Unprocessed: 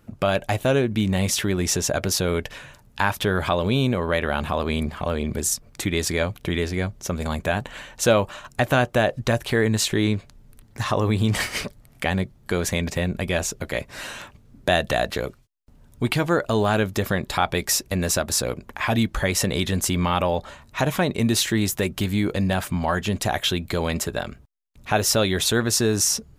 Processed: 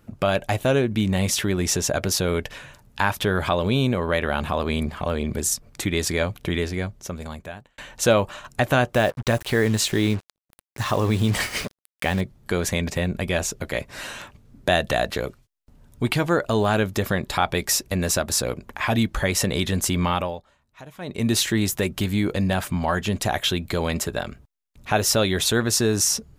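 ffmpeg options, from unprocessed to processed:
ffmpeg -i in.wav -filter_complex "[0:a]asettb=1/sr,asplit=3[link_01][link_02][link_03];[link_01]atrim=end=8.944[link_04];[link_02]atrim=start=8.94:end=12.21,asetpts=PTS-STARTPTS,afade=type=in:duration=0.004:curve=qsin,afade=type=out:start_time=3.266:duration=0.004:curve=qsin,acrusher=bits=5:mix=0:aa=0.5[link_05];[link_03]atrim=start=12.206[link_06];[link_04][link_05]acrossfade=duration=0.004:curve1=hsin:curve2=qsin[link_07];[link_07][link_06]acrossfade=duration=0.004:curve1=qsin:curve2=hsin,asplit=4[link_08][link_09][link_10][link_11];[link_08]atrim=end=7.78,asetpts=PTS-STARTPTS,afade=type=out:start_time=6.55:duration=1.23[link_12];[link_09]atrim=start=7.78:end=20.43,asetpts=PTS-STARTPTS,afade=type=in:duration=0.004:curve=hsin,afade=type=out:start_time=12.32:duration=0.33:silence=0.1[link_13];[link_10]atrim=start=20.43:end=20.98,asetpts=PTS-STARTPTS,volume=-20dB[link_14];[link_11]atrim=start=20.98,asetpts=PTS-STARTPTS,afade=type=in:duration=0.33:silence=0.1[link_15];[link_12][link_13][link_14][link_15]concat=n=4:v=0:a=1" out.wav

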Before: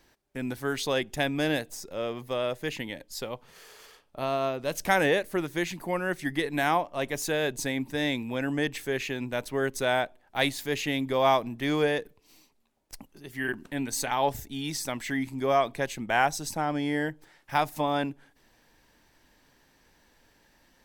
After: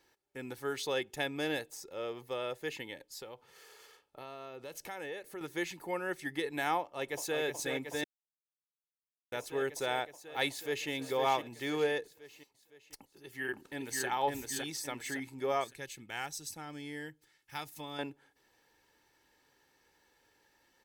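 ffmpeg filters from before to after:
ffmpeg -i in.wav -filter_complex "[0:a]asettb=1/sr,asplit=3[link_01][link_02][link_03];[link_01]atrim=end=3.014[link_04];[link_02]atrim=start=3.01:end=5.41,asetpts=PTS-STARTPTS,afade=type=in:duration=0.004:curve=qsin,afade=type=out:start_time=2.396:duration=0.004:curve=qsin,acompressor=threshold=-36dB:ratio=3:attack=3.2:release=140:knee=1:detection=peak[link_05];[link_03]atrim=start=5.406[link_06];[link_04][link_05]acrossfade=duration=0.004:curve1=hsin:curve2=qsin[link_07];[link_07][link_06]acrossfade=duration=0.004:curve1=qsin:curve2=hsin,asplit=2[link_08][link_09];[link_09]afade=type=in:start_time=6.8:duration=0.01,afade=type=out:start_time=7.4:duration=0.01,aecho=0:1:370|740|1110|1480|1850|2220|2590|2960|3330|3700|4070|4440:0.530884|0.451252|0.383564|0.326029|0.277125|0.235556|0.200223|0.170189|0.144661|0.122962|0.104518|0.0888399[link_10];[link_08][link_10]amix=inputs=2:normalize=0,asplit=2[link_11][link_12];[link_12]afade=type=in:start_time=10.5:duration=0.01,afade=type=out:start_time=10.9:duration=0.01,aecho=0:1:510|1020|1530|2040|2550|3060:0.473151|0.236576|0.118288|0.0591439|0.029572|0.014786[link_13];[link_11][link_13]amix=inputs=2:normalize=0,asplit=2[link_14][link_15];[link_15]afade=type=in:start_time=12.97:duration=0.01,afade=type=out:start_time=14.07:duration=0.01,aecho=0:1:560|1120|1680|2240|2800:0.841395|0.336558|0.134623|0.0538493|0.0215397[link_16];[link_14][link_16]amix=inputs=2:normalize=0,asettb=1/sr,asplit=3[link_17][link_18][link_19];[link_17]atrim=end=15.644[link_20];[link_18]atrim=start=15.64:end=17.99,asetpts=PTS-STARTPTS,afade=type=in:duration=0.004:curve=qsin,afade=type=out:start_time=2.346:duration=0.004:curve=qsin,equalizer=frequency=710:width_type=o:width=2.4:gain=-13[link_21];[link_19]atrim=start=17.986[link_22];[link_20][link_21]acrossfade=duration=0.004:curve1=hsin:curve2=qsin[link_23];[link_23][link_22]acrossfade=duration=0.004:curve1=qsin:curve2=hsin,asplit=3[link_24][link_25][link_26];[link_24]atrim=end=8.04,asetpts=PTS-STARTPTS,afade=type=out:start_time=8.036:duration=0.004:curve=hsin[link_27];[link_25]atrim=start=8.04:end=9.32,asetpts=PTS-STARTPTS,volume=0[link_28];[link_26]atrim=start=9.32,asetpts=PTS-STARTPTS,afade=type=in:duration=0.004:curve=hsin[link_29];[link_27][link_28][link_29]concat=n=3:v=0:a=1,highpass=frequency=180:poles=1,aecho=1:1:2.3:0.46,volume=-7dB" out.wav

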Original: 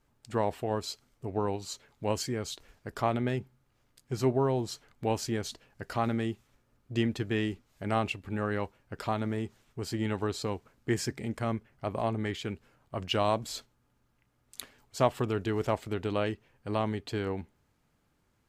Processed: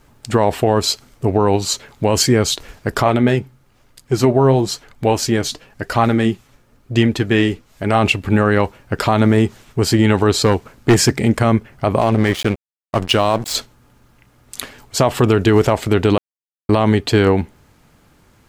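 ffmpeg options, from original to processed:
ffmpeg -i in.wav -filter_complex "[0:a]asplit=3[link_01][link_02][link_03];[link_01]afade=type=out:start_time=3.03:duration=0.02[link_04];[link_02]flanger=delay=0.8:depth=6.8:regen=65:speed=1:shape=triangular,afade=type=in:start_time=3.03:duration=0.02,afade=type=out:start_time=7.98:duration=0.02[link_05];[link_03]afade=type=in:start_time=7.98:duration=0.02[link_06];[link_04][link_05][link_06]amix=inputs=3:normalize=0,asettb=1/sr,asplit=3[link_07][link_08][link_09];[link_07]atrim=end=10.374[link_10];[link_08]atrim=start=10.37:end=11.17,asetpts=PTS-STARTPTS,afade=type=in:duration=0.004:curve=qsin,afade=type=out:start_time=0.796:duration=0.004:curve=qsin,asoftclip=type=hard:threshold=-26dB[link_11];[link_09]atrim=start=11.166[link_12];[link_10][link_11]acrossfade=duration=0.004:curve1=hsin:curve2=qsin[link_13];[link_13][link_12]acrossfade=duration=0.004:curve1=qsin:curve2=hsin,asettb=1/sr,asplit=3[link_14][link_15][link_16];[link_14]atrim=end=12.014[link_17];[link_15]atrim=start=12.01:end=13.55,asetpts=PTS-STARTPTS,afade=type=in:duration=0.004:curve=qsin,afade=type=out:start_time=1.536:duration=0.004:curve=qsin,aeval=exprs='sgn(val(0))*max(abs(val(0))-0.00668,0)':channel_layout=same[link_18];[link_16]atrim=start=13.546[link_19];[link_17][link_18]acrossfade=duration=0.004:curve1=hsin:curve2=qsin[link_20];[link_20][link_19]acrossfade=duration=0.004:curve1=qsin:curve2=hsin,asplit=3[link_21][link_22][link_23];[link_21]atrim=end=16.18,asetpts=PTS-STARTPTS,afade=type=out:start_time=16.176:duration=0.004:curve=hsin[link_24];[link_22]atrim=start=16.18:end=16.69,asetpts=PTS-STARTPTS,volume=0[link_25];[link_23]atrim=start=16.69,asetpts=PTS-STARTPTS,afade=type=in:duration=0.004:curve=hsin[link_26];[link_24][link_25][link_26]concat=n=3:v=0:a=1,alimiter=level_in=22dB:limit=-1dB:release=50:level=0:latency=1,volume=-2dB" out.wav

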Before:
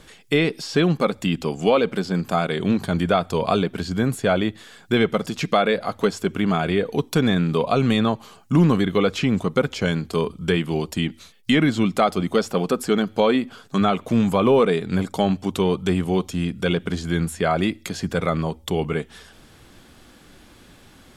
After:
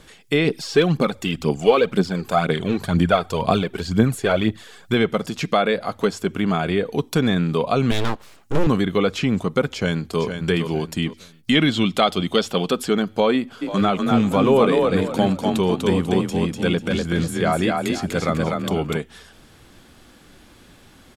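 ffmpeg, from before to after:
ffmpeg -i in.wav -filter_complex "[0:a]asplit=3[link_01][link_02][link_03];[link_01]afade=type=out:start_time=0.45:duration=0.02[link_04];[link_02]aphaser=in_gain=1:out_gain=1:delay=2.8:decay=0.56:speed=2:type=triangular,afade=type=in:start_time=0.45:duration=0.02,afade=type=out:start_time=4.93:duration=0.02[link_05];[link_03]afade=type=in:start_time=4.93:duration=0.02[link_06];[link_04][link_05][link_06]amix=inputs=3:normalize=0,asettb=1/sr,asplit=3[link_07][link_08][link_09];[link_07]atrim=end=7.914[link_10];[link_08]atrim=start=7.91:end=8.67,asetpts=PTS-STARTPTS,afade=type=in:duration=0.004:curve=qsin,afade=type=out:start_time=0.756:duration=0.004:curve=qsin,aeval=exprs='abs(val(0))':channel_layout=same[link_11];[link_09]atrim=start=8.666[link_12];[link_10][link_11]acrossfade=duration=0.004:curve1=hsin:curve2=qsin[link_13];[link_13][link_12]acrossfade=duration=0.004:curve1=qsin:curve2=hsin,asplit=2[link_14][link_15];[link_15]afade=type=in:start_time=9.73:duration=0.01,afade=type=out:start_time=10.21:duration=0.01,aecho=0:1:460|920|1380|1840:0.421697|0.126509|0.0379527|0.0113858[link_16];[link_14][link_16]amix=inputs=2:normalize=0,asettb=1/sr,asplit=3[link_17][link_18][link_19];[link_17]atrim=end=11.554[link_20];[link_18]atrim=start=11.55:end=12.89,asetpts=PTS-STARTPTS,afade=type=in:duration=0.004:curve=qsin,afade=type=out:start_time=1.336:duration=0.004:curve=qsin,equalizer=frequency=3300:width_type=o:width=0.7:gain=11[link_21];[link_19]atrim=start=12.886[link_22];[link_20][link_21]acrossfade=duration=0.004:curve1=hsin:curve2=qsin[link_23];[link_23][link_22]acrossfade=duration=0.004:curve1=qsin:curve2=hsin,asplit=3[link_24][link_25][link_26];[link_24]afade=type=out:start_time=13.61:duration=0.02[link_27];[link_25]asplit=5[link_28][link_29][link_30][link_31][link_32];[link_29]adelay=246,afreqshift=32,volume=-3dB[link_33];[link_30]adelay=492,afreqshift=64,volume=-13.5dB[link_34];[link_31]adelay=738,afreqshift=96,volume=-23.9dB[link_35];[link_32]adelay=984,afreqshift=128,volume=-34.4dB[link_36];[link_28][link_33][link_34][link_35][link_36]amix=inputs=5:normalize=0,afade=type=in:start_time=13.61:duration=0.02,afade=type=out:start_time=18.96:duration=0.02[link_37];[link_26]afade=type=in:start_time=18.96:duration=0.02[link_38];[link_27][link_37][link_38]amix=inputs=3:normalize=0" out.wav

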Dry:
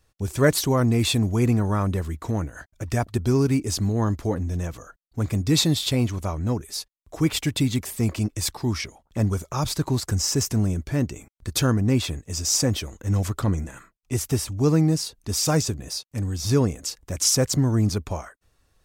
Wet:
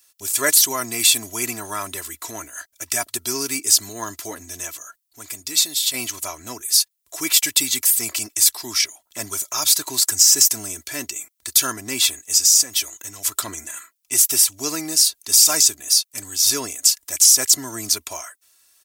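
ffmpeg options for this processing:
ffmpeg -i in.wav -filter_complex "[0:a]asplit=3[link_01][link_02][link_03];[link_01]afade=type=out:start_time=4.72:duration=0.02[link_04];[link_02]acompressor=threshold=-41dB:ratio=1.5:attack=3.2:release=140:knee=1:detection=peak,afade=type=in:start_time=4.72:duration=0.02,afade=type=out:start_time=5.93:duration=0.02[link_05];[link_03]afade=type=in:start_time=5.93:duration=0.02[link_06];[link_04][link_05][link_06]amix=inputs=3:normalize=0,asettb=1/sr,asplit=3[link_07][link_08][link_09];[link_07]atrim=end=12.374[link_10];[link_08]atrim=start=12.37:end=13.32,asetpts=PTS-STARTPTS,afade=type=in:duration=0.004:curve=qsin,afade=type=out:start_time=0.946:duration=0.004:curve=qsin,acompressor=threshold=-26dB:ratio=5:attack=3.2:release=140:knee=1:detection=peak[link_11];[link_09]atrim=start=13.316[link_12];[link_10][link_11]acrossfade=duration=0.004:curve1=hsin:curve2=qsin[link_13];[link_13][link_12]acrossfade=duration=0.004:curve1=qsin:curve2=hsin,aderivative,aecho=1:1:3:0.57,alimiter=level_in=17dB:limit=-1dB:release=50:level=0:latency=1,volume=-1dB" out.wav

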